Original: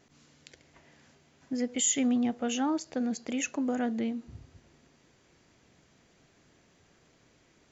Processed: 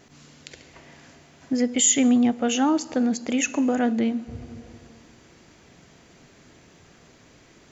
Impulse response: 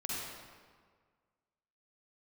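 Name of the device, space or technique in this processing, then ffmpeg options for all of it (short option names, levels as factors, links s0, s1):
compressed reverb return: -filter_complex "[0:a]asplit=2[s0][s1];[1:a]atrim=start_sample=2205[s2];[s1][s2]afir=irnorm=-1:irlink=0,acompressor=threshold=0.0126:ratio=6,volume=0.501[s3];[s0][s3]amix=inputs=2:normalize=0,volume=2.37"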